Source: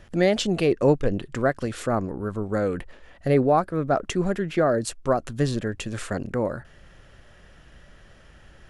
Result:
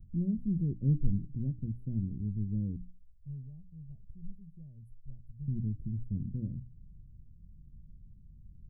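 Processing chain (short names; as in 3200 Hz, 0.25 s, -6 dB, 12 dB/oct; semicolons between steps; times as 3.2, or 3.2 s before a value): 2.76–5.48 passive tone stack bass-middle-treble 10-0-10; inverse Chebyshev band-stop 1000–7000 Hz, stop band 80 dB; notches 60/120/180/240/300 Hz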